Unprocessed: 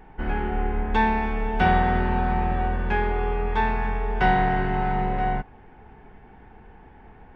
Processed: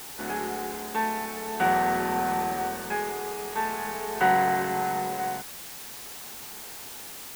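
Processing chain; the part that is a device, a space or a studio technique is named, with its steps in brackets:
shortwave radio (band-pass filter 260–2,800 Hz; amplitude tremolo 0.45 Hz, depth 46%; white noise bed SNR 12 dB)

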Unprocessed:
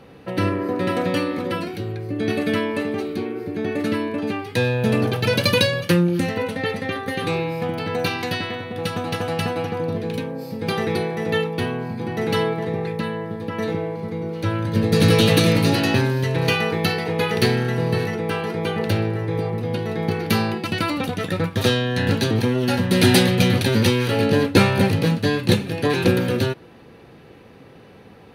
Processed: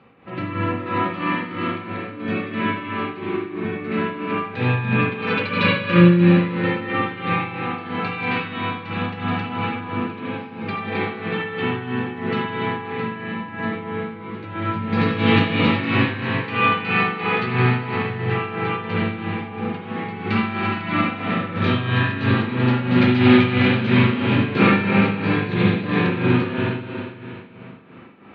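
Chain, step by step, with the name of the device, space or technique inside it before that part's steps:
combo amplifier with spring reverb and tremolo (spring reverb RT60 2.8 s, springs 40/57 ms, chirp 40 ms, DRR −9 dB; amplitude tremolo 3 Hz, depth 66%; loudspeaker in its box 94–3,600 Hz, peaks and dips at 210 Hz +4 dB, 500 Hz −5 dB, 1,200 Hz +8 dB, 2,300 Hz +6 dB)
level −7 dB

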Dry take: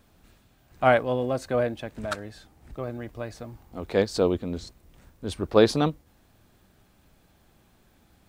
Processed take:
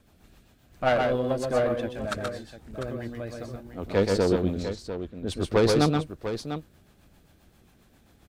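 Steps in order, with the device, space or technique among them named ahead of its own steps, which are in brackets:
overdriven rotary cabinet (tube saturation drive 17 dB, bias 0.5; rotating-speaker cabinet horn 7.5 Hz)
0:04.62–0:05.26: low-pass filter 6,100 Hz → 2,600 Hz 12 dB per octave
multi-tap delay 127/148/698 ms −4/−12.5/−10 dB
level +4 dB

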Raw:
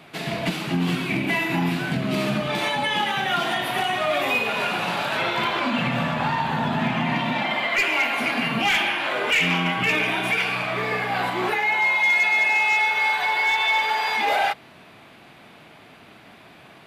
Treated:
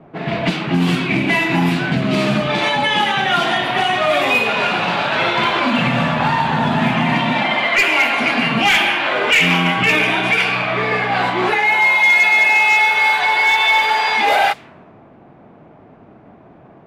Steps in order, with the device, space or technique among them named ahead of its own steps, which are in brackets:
cassette deck with a dynamic noise filter (white noise bed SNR 31 dB; low-pass that shuts in the quiet parts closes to 650 Hz, open at −17.5 dBFS)
level +7 dB

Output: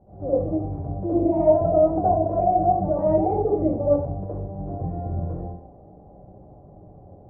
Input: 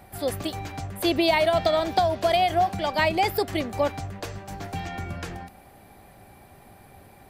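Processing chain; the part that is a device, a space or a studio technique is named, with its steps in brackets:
next room (low-pass filter 650 Hz 24 dB per octave; convolution reverb RT60 0.50 s, pre-delay 62 ms, DRR −10 dB)
level −4.5 dB

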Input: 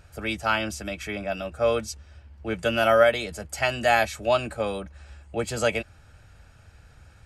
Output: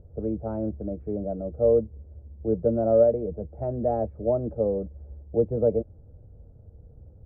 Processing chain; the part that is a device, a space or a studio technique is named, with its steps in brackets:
under water (low-pass filter 530 Hz 24 dB per octave; parametric band 470 Hz +5.5 dB 0.33 octaves)
level +3.5 dB

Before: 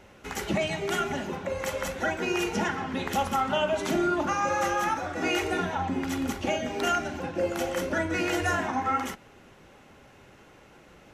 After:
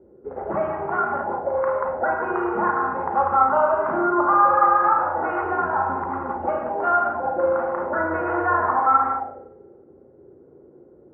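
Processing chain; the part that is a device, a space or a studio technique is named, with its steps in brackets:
spring reverb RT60 1.4 s, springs 34/49 ms, chirp 25 ms, DRR 1.5 dB
envelope filter bass rig (envelope-controlled low-pass 340–1,100 Hz up, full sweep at −24 dBFS; loudspeaker in its box 89–2,000 Hz, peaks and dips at 110 Hz −7 dB, 190 Hz −10 dB, 280 Hz −7 dB, 520 Hz +3 dB, 1,400 Hz +4 dB)

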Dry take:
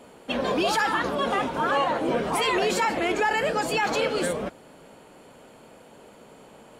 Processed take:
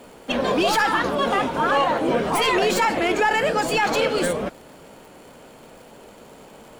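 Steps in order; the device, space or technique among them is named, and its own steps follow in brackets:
record under a worn stylus (stylus tracing distortion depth 0.038 ms; surface crackle 100 per second −43 dBFS; pink noise bed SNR 36 dB)
level +4 dB

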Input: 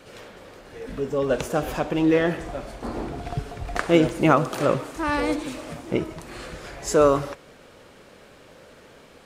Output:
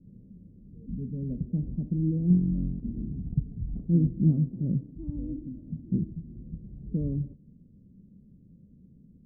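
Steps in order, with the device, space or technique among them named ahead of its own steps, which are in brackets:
the neighbour's flat through the wall (low-pass filter 220 Hz 24 dB per octave; parametric band 190 Hz +8 dB 0.62 octaves)
0:02.28–0:02.80: flutter between parallel walls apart 3.8 metres, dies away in 1.1 s

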